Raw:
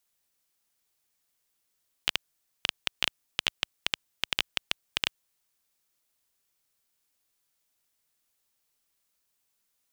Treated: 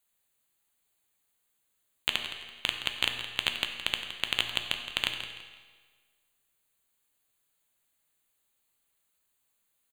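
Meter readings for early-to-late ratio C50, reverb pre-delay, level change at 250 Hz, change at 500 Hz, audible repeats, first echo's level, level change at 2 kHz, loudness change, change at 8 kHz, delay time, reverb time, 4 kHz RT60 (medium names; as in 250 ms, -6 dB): 5.5 dB, 8 ms, +1.5 dB, +1.5 dB, 2, -12.0 dB, +1.5 dB, +1.0 dB, -1.5 dB, 167 ms, 1.5 s, 1.3 s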